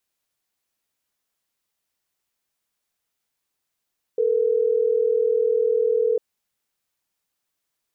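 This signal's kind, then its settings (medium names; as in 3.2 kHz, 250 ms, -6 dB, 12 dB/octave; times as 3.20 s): call progress tone ringback tone, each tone -20 dBFS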